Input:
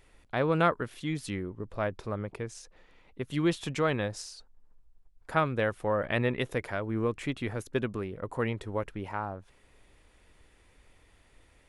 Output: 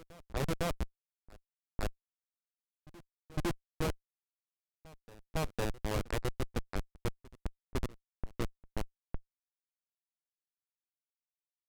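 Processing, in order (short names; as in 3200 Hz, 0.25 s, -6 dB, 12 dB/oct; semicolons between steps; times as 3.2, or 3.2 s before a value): Schmitt trigger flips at -23 dBFS; low-pass opened by the level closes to 980 Hz, open at -33.5 dBFS; reverse echo 0.506 s -21.5 dB; gain +2 dB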